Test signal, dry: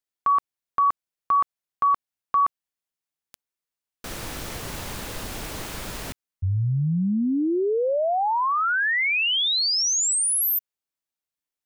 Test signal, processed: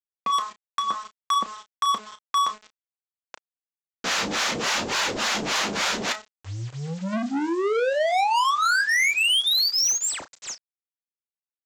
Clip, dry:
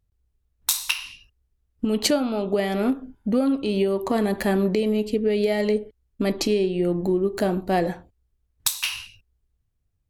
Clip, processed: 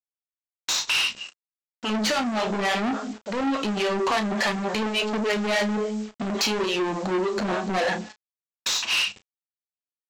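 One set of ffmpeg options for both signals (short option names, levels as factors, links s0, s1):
-filter_complex "[0:a]equalizer=f=210:t=o:w=0.41:g=14.5,bandreject=f=213.5:t=h:w=4,bandreject=f=427:t=h:w=4,bandreject=f=640.5:t=h:w=4,bandreject=f=854:t=h:w=4,bandreject=f=1067.5:t=h:w=4,bandreject=f=1281:t=h:w=4,bandreject=f=1494.5:t=h:w=4,bandreject=f=1708:t=h:w=4,bandreject=f=1921.5:t=h:w=4,acrossover=split=540[s0][s1];[s0]aeval=exprs='val(0)*(1-1/2+1/2*cos(2*PI*3.5*n/s))':c=same[s2];[s1]aeval=exprs='val(0)*(1-1/2-1/2*cos(2*PI*3.5*n/s))':c=same[s3];[s2][s3]amix=inputs=2:normalize=0,asplit=2[s4][s5];[s5]acompressor=threshold=0.0251:ratio=10:attack=1.5:release=59:knee=1:detection=peak,volume=0.841[s6];[s4][s6]amix=inputs=2:normalize=0,asplit=2[s7][s8];[s8]highpass=f=720:p=1,volume=28.2,asoftclip=type=tanh:threshold=0.531[s9];[s7][s9]amix=inputs=2:normalize=0,lowpass=f=5900:p=1,volume=0.501,flanger=delay=2:depth=9.1:regen=-41:speed=0.6:shape=sinusoidal,aresample=16000,acrusher=bits=6:mix=0:aa=0.000001,aresample=44100,asoftclip=type=tanh:threshold=0.126,lowshelf=f=310:g=-9.5,asplit=2[s10][s11];[s11]adelay=33,volume=0.251[s12];[s10][s12]amix=inputs=2:normalize=0"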